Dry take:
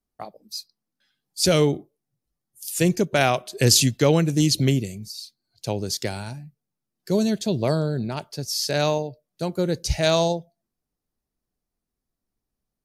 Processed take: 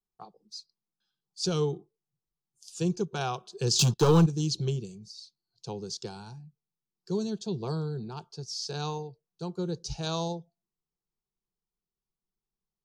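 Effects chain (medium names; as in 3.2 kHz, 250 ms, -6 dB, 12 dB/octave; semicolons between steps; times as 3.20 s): low-pass 6.7 kHz 24 dB/octave; 3.79–4.26 s: waveshaping leveller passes 3; static phaser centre 400 Hz, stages 8; trim -7 dB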